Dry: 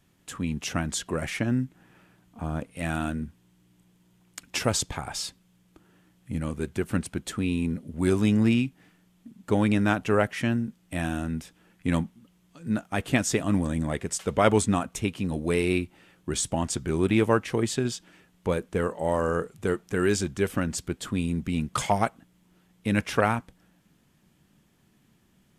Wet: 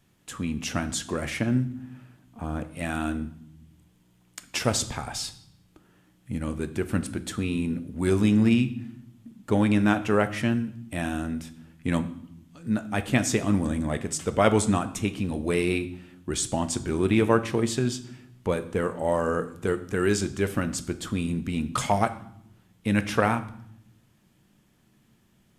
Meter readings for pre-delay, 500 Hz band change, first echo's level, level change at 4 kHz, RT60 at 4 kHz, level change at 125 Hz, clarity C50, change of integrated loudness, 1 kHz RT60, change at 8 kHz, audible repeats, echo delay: 3 ms, +0.5 dB, no echo audible, +0.5 dB, 0.65 s, +0.5 dB, 15.0 dB, +0.5 dB, 0.65 s, +0.5 dB, no echo audible, no echo audible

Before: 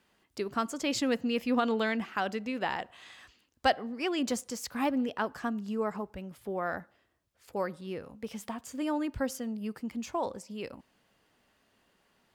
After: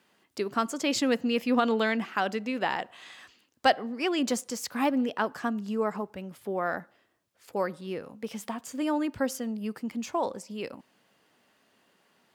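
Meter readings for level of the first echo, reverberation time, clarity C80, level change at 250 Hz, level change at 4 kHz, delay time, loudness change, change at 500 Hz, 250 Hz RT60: no echo audible, no reverb audible, no reverb audible, +3.0 dB, +3.5 dB, no echo audible, +3.5 dB, +3.5 dB, no reverb audible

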